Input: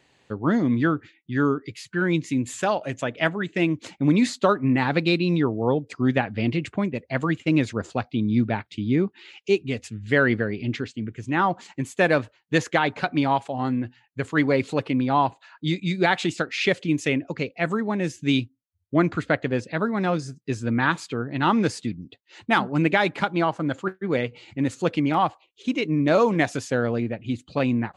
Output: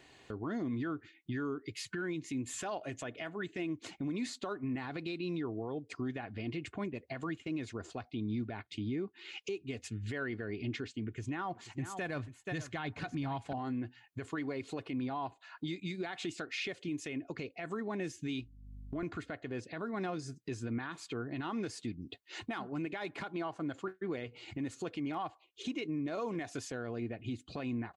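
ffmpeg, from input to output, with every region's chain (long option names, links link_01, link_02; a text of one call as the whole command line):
ffmpeg -i in.wav -filter_complex "[0:a]asettb=1/sr,asplit=3[link_01][link_02][link_03];[link_01]atrim=end=11.064[link_04];[link_02]atrim=start=11.06:end=13.53,asetpts=PTS-STARTPTS,afade=type=in:duration=0.004:curve=qsin,afade=type=out:start_time=2.466:duration=0.004:curve=qsin,asubboost=boost=8.5:cutoff=170,aecho=1:1:481:0.15,atrim=end_sample=108927[link_05];[link_03]atrim=start=13.526[link_06];[link_04][link_05]acrossfade=duration=0.004:curve1=hsin:curve2=qsin[link_07];[link_07][link_06]acrossfade=duration=0.004:curve1=qsin:curve2=hsin,asettb=1/sr,asplit=3[link_08][link_09][link_10];[link_08]atrim=end=18.414[link_11];[link_09]atrim=start=18.41:end=19.03,asetpts=PTS-STARTPTS,afade=type=in:duration=0.004:curve=qsin,afade=type=out:start_time=0.616:duration=0.004:curve=qsin,acompressor=threshold=-32dB:ratio=4:attack=3.2:release=140:knee=1:detection=peak,aeval=exprs='val(0)+0.00355*(sin(2*PI*50*n/s)+sin(2*PI*2*50*n/s)/2+sin(2*PI*3*50*n/s)/3+sin(2*PI*4*50*n/s)/4+sin(2*PI*5*50*n/s)/5)':channel_layout=same[link_12];[link_10]atrim=start=19.026[link_13];[link_11][link_12]acrossfade=duration=0.004:curve1=hsin:curve2=qsin[link_14];[link_14][link_13]acrossfade=duration=0.004:curve1=qsin:curve2=hsin,aecho=1:1:2.8:0.36,acompressor=threshold=-39dB:ratio=3,alimiter=level_in=6.5dB:limit=-24dB:level=0:latency=1:release=34,volume=-6.5dB,volume=1.5dB" out.wav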